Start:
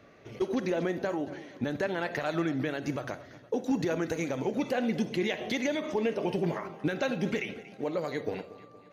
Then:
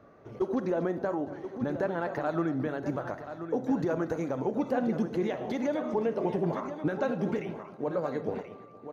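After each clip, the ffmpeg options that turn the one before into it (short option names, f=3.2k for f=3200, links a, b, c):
-af "highshelf=f=1.7k:t=q:w=1.5:g=-10,aecho=1:1:1031:0.316"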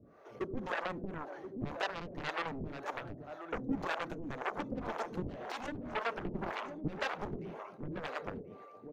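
-filter_complex "[0:a]aeval=exprs='0.15*(cos(1*acos(clip(val(0)/0.15,-1,1)))-cos(1*PI/2))+0.0668*(cos(7*acos(clip(val(0)/0.15,-1,1)))-cos(7*PI/2))':c=same,acrossover=split=430[a][b];[a]aeval=exprs='val(0)*(1-1/2+1/2*cos(2*PI*1.9*n/s))':c=same[c];[b]aeval=exprs='val(0)*(1-1/2-1/2*cos(2*PI*1.9*n/s))':c=same[d];[c][d]amix=inputs=2:normalize=0,volume=-5.5dB"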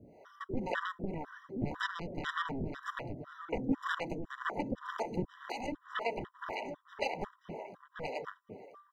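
-af "afftfilt=real='re*gt(sin(2*PI*2*pts/sr)*(1-2*mod(floor(b*sr/1024/990),2)),0)':imag='im*gt(sin(2*PI*2*pts/sr)*(1-2*mod(floor(b*sr/1024/990),2)),0)':win_size=1024:overlap=0.75,volume=4dB"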